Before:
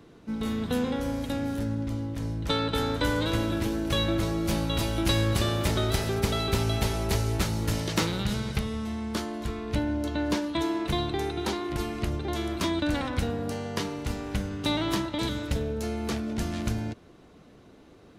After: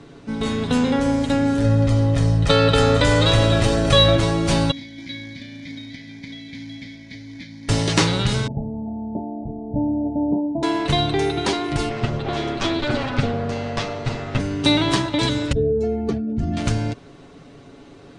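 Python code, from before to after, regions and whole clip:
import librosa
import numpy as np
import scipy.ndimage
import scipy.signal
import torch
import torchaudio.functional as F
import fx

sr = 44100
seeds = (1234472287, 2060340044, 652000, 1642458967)

y = fx.chain(x, sr, fx.comb(ms=1.6, depth=0.51),
    fx.env_flatten(amount_pct=50), at=(1.64, 4.16))
y = fx.chain(y, sr, fx.vowel_filter(vowel='i'),
    fx.quant_float(bits=2),
    fx.fixed_phaser(hz=1900.0, stages=8), at=(4.71, 7.69))
y = fx.chain(y, sr, fx.cheby_ripple(hz=910.0, ripple_db=9),
    fx.doubler(ms=28.0, db=-12.5), at=(8.47, 10.63))
y = fx.chain(y, sr, fx.lower_of_two(delay_ms=8.7),
    fx.air_absorb(metres=98.0),
    fx.doppler_dist(depth_ms=0.28), at=(11.89, 14.4))
y = fx.chain(y, sr, fx.spec_expand(power=1.9),
    fx.env_flatten(amount_pct=50), at=(15.52, 16.57))
y = scipy.signal.sosfilt(scipy.signal.ellip(4, 1.0, 50, 9200.0, 'lowpass', fs=sr, output='sos'), y)
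y = y + 0.52 * np.pad(y, (int(7.2 * sr / 1000.0), 0))[:len(y)]
y = F.gain(torch.from_numpy(y), 9.0).numpy()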